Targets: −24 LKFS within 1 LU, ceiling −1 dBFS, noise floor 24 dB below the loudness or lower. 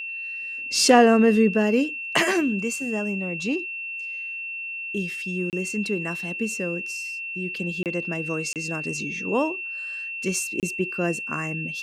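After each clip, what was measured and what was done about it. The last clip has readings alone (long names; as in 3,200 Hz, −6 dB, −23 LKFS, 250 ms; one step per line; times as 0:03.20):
number of dropouts 4; longest dropout 28 ms; interfering tone 2,700 Hz; level of the tone −30 dBFS; integrated loudness −24.5 LKFS; sample peak −3.5 dBFS; target loudness −24.0 LKFS
→ repair the gap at 0:05.50/0:07.83/0:08.53/0:10.60, 28 ms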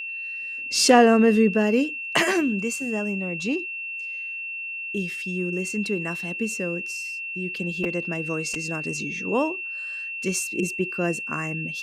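number of dropouts 0; interfering tone 2,700 Hz; level of the tone −30 dBFS
→ notch filter 2,700 Hz, Q 30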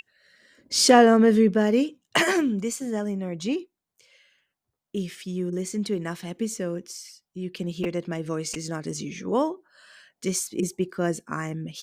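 interfering tone none found; integrated loudness −25.0 LKFS; sample peak −4.0 dBFS; target loudness −24.0 LKFS
→ level +1 dB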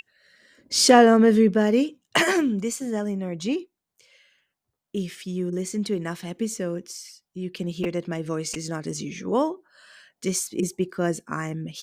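integrated loudness −24.0 LKFS; sample peak −3.0 dBFS; background noise floor −84 dBFS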